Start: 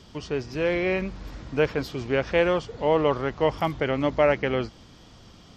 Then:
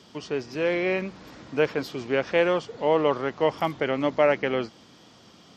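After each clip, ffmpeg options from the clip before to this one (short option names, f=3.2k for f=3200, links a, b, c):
-af "highpass=180"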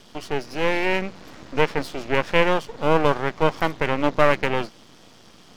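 -af "aeval=exprs='max(val(0),0)':c=same,volume=6.5dB"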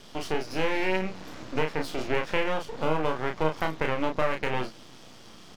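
-filter_complex "[0:a]acompressor=threshold=-22dB:ratio=4,asplit=2[a][b];[b]adelay=32,volume=-4.5dB[c];[a][c]amix=inputs=2:normalize=0,volume=-1dB"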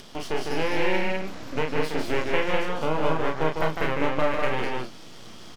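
-af "acompressor=mode=upward:threshold=-40dB:ratio=2.5,aecho=1:1:151.6|201.2:0.562|0.708"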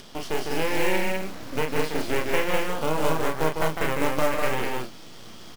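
-af "acrusher=bits=4:mode=log:mix=0:aa=0.000001"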